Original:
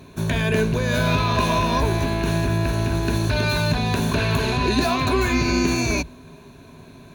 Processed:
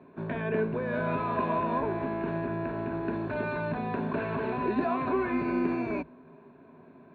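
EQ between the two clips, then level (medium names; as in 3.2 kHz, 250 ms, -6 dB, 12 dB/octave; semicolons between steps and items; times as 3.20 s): distance through air 440 m; three-band isolator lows -22 dB, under 180 Hz, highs -14 dB, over 2.2 kHz; treble shelf 12 kHz -5.5 dB; -4.5 dB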